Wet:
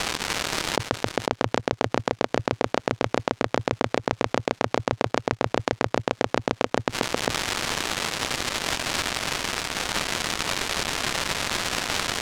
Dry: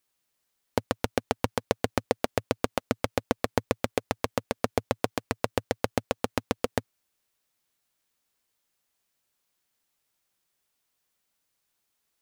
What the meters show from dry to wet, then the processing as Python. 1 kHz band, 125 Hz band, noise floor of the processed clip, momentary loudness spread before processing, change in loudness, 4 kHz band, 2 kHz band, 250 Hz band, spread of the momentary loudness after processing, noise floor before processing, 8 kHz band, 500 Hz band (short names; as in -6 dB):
+7.5 dB, +5.0 dB, -57 dBFS, 2 LU, +5.0 dB, +14.0 dB, +11.0 dB, +4.5 dB, 1 LU, -78 dBFS, +13.0 dB, +4.5 dB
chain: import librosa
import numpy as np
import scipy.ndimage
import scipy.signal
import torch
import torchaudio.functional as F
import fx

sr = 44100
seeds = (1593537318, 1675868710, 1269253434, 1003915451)

p1 = scipy.signal.sosfilt(scipy.signal.ellip(3, 1.0, 40, [120.0, 7500.0], 'bandpass', fs=sr, output='sos'), x)
p2 = fx.low_shelf(p1, sr, hz=430.0, db=7.0)
p3 = fx.dmg_crackle(p2, sr, seeds[0], per_s=320.0, level_db=-46.0)
p4 = np.sign(p3) * np.maximum(np.abs(p3) - 10.0 ** (-39.5 / 20.0), 0.0)
p5 = p3 + (p4 * 10.0 ** (-6.0 / 20.0))
p6 = fx.gate_flip(p5, sr, shuts_db=-28.0, range_db=-29)
p7 = fx.air_absorb(p6, sr, metres=59.0)
p8 = p7 + 10.0 ** (-8.0 / 20.0) * np.pad(p7, (int(501 * sr / 1000.0), 0))[:len(p7)]
p9 = fx.env_flatten(p8, sr, amount_pct=100)
y = p9 * 10.0 ** (-1.0 / 20.0)